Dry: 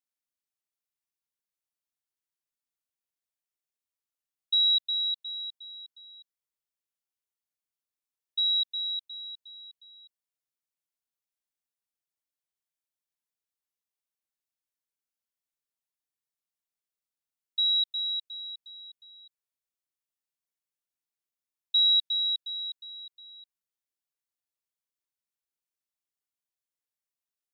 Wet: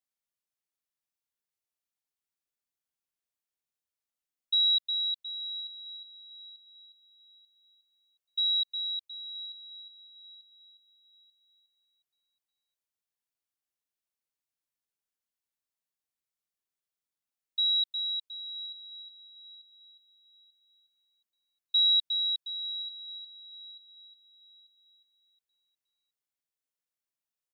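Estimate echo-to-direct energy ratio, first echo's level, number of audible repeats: -12.5 dB, -13.0 dB, 2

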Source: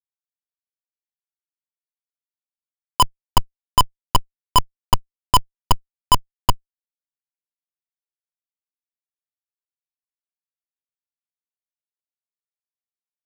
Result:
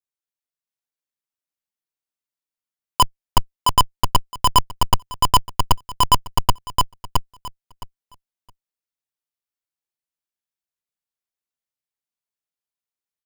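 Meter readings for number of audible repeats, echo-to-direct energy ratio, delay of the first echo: 2, -3.0 dB, 666 ms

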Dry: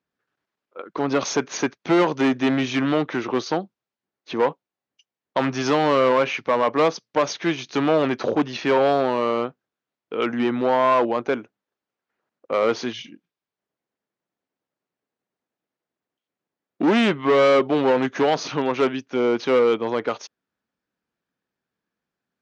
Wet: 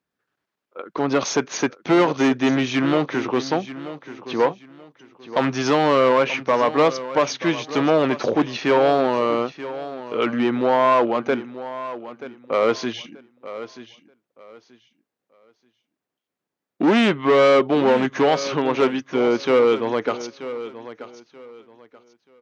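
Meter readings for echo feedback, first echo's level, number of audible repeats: 25%, -14.0 dB, 2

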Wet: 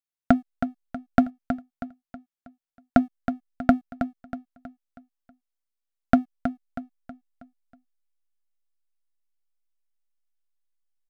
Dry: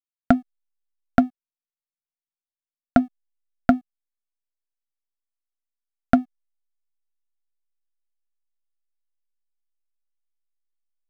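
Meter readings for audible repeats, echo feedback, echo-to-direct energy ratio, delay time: 4, 42%, -8.0 dB, 320 ms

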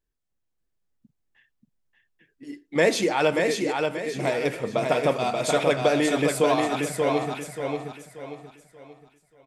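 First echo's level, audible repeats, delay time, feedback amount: -4.0 dB, 4, 583 ms, 36%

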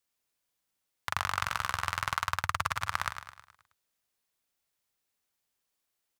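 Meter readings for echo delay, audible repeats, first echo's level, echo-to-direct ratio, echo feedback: 106 ms, 5, -9.0 dB, -8.0 dB, 49%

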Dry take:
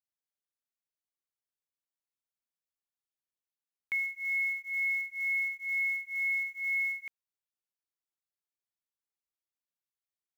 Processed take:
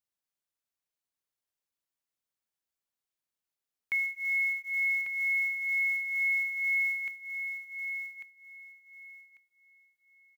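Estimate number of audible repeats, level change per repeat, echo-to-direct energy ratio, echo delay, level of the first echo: 3, -13.5 dB, -7.5 dB, 1145 ms, -7.5 dB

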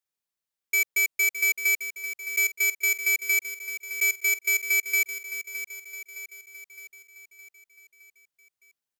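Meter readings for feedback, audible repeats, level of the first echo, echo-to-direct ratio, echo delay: 55%, 5, -11.0 dB, -9.5 dB, 614 ms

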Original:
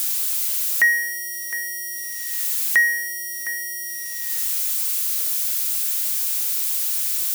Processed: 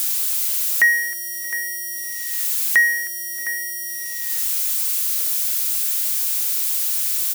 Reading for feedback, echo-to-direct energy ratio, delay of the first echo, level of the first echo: 58%, -20.5 dB, 314 ms, -22.0 dB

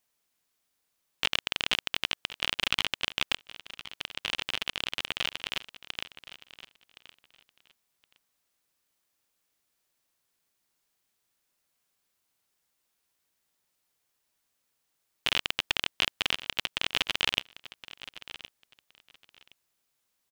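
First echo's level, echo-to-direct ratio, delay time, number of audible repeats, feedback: -16.0 dB, -16.0 dB, 1068 ms, 2, 18%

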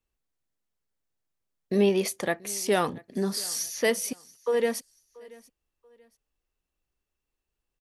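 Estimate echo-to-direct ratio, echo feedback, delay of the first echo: -22.5 dB, 31%, 683 ms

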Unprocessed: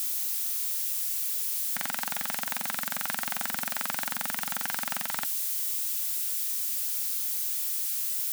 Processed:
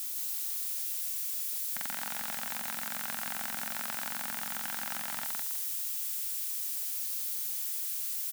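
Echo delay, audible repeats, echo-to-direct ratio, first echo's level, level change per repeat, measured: 160 ms, 3, -2.5 dB, -3.0 dB, -11.0 dB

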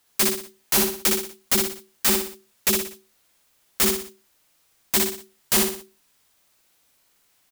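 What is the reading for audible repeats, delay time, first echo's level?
4, 60 ms, -3.0 dB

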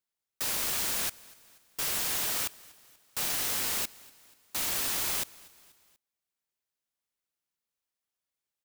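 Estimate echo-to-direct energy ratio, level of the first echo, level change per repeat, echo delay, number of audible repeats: -21.5 dB, -23.0 dB, -5.5 dB, 242 ms, 3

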